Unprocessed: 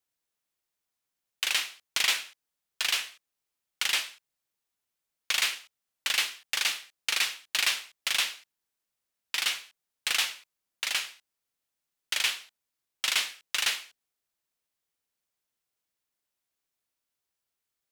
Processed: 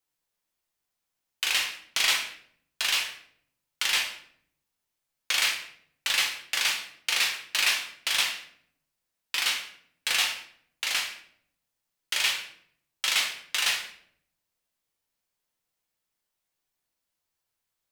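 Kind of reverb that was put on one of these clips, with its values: simulated room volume 110 m³, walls mixed, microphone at 0.74 m

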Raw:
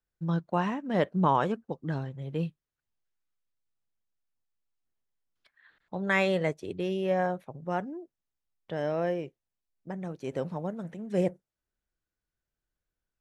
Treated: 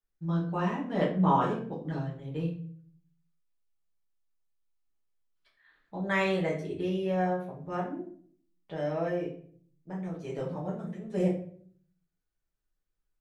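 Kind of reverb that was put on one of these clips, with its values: simulated room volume 55 m³, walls mixed, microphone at 1.3 m; trim -8.5 dB

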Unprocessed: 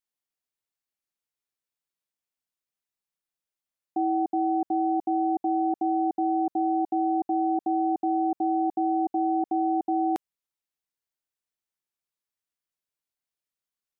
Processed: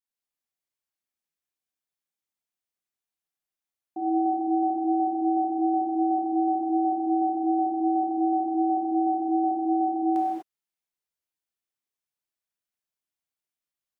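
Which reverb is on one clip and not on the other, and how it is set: gated-style reverb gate 270 ms flat, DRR -5 dB; trim -7.5 dB

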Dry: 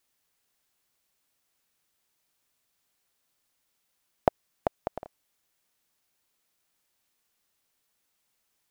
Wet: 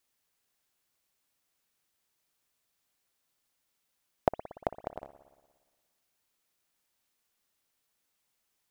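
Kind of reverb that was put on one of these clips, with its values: spring tank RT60 1.4 s, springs 58 ms, chirp 60 ms, DRR 13 dB; trim -3 dB

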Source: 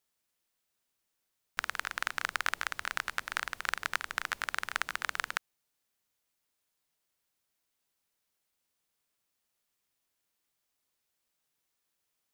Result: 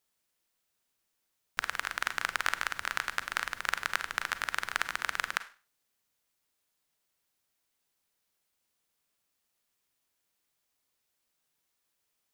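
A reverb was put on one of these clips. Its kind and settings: Schroeder reverb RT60 0.36 s, combs from 33 ms, DRR 12.5 dB; trim +1.5 dB

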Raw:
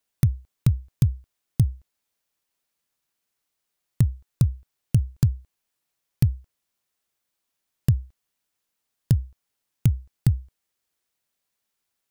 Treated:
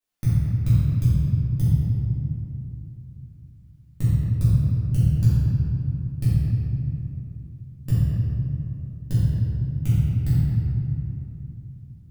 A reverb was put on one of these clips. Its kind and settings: simulated room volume 120 m³, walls hard, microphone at 2.1 m; trim -13 dB

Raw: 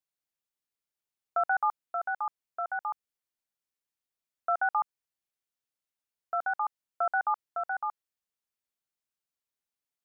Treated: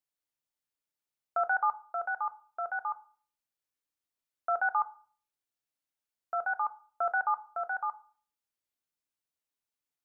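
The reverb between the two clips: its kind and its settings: FDN reverb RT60 0.45 s, low-frequency decay 1.4×, high-frequency decay 0.4×, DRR 11 dB; trim -1.5 dB

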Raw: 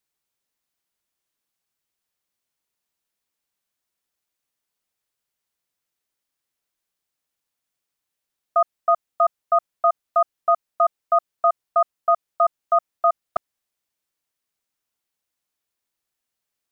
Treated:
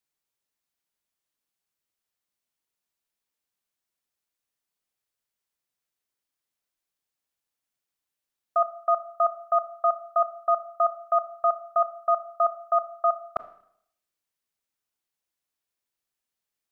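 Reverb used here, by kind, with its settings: Schroeder reverb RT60 0.69 s, combs from 26 ms, DRR 12.5 dB; trim -4.5 dB

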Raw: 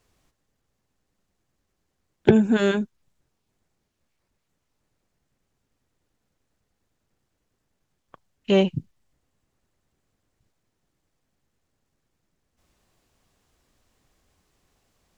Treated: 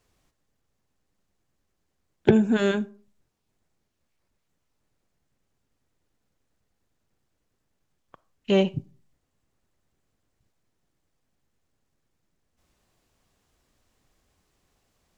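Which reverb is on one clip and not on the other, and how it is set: algorithmic reverb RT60 0.41 s, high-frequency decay 0.5×, pre-delay 5 ms, DRR 19 dB; trim -2 dB

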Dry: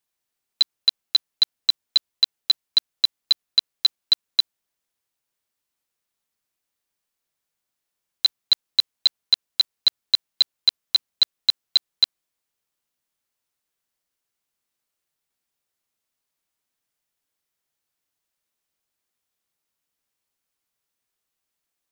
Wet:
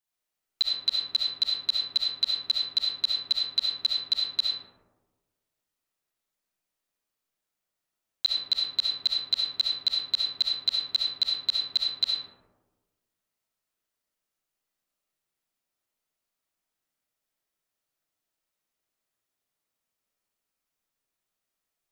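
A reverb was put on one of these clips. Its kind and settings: algorithmic reverb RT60 1.3 s, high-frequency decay 0.3×, pre-delay 25 ms, DRR -4.5 dB; trim -7.5 dB

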